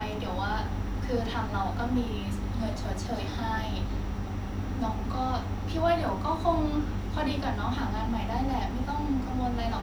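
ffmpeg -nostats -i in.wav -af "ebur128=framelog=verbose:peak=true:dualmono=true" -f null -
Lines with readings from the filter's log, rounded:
Integrated loudness:
  I:         -27.7 LUFS
  Threshold: -37.7 LUFS
Loudness range:
  LRA:         3.1 LU
  Threshold: -47.6 LUFS
  LRA low:   -29.4 LUFS
  LRA high:  -26.3 LUFS
True peak:
  Peak:      -13.9 dBFS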